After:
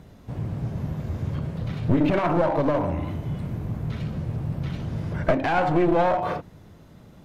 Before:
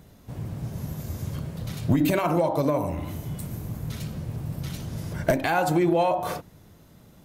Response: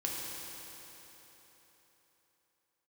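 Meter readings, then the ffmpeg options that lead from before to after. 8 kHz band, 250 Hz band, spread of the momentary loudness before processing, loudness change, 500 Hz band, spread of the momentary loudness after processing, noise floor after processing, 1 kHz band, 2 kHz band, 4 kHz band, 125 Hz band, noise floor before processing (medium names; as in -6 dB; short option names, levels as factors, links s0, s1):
under -10 dB, +1.5 dB, 12 LU, +1.5 dB, +1.5 dB, 10 LU, -49 dBFS, +2.0 dB, +1.0 dB, -2.5 dB, +2.5 dB, -53 dBFS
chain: -filter_complex "[0:a]acrossover=split=3700[s0][s1];[s1]acompressor=threshold=0.00141:ratio=4:attack=1:release=60[s2];[s0][s2]amix=inputs=2:normalize=0,aeval=exprs='clip(val(0),-1,0.0501)':c=same,aemphasis=mode=reproduction:type=50kf,volume=1.58"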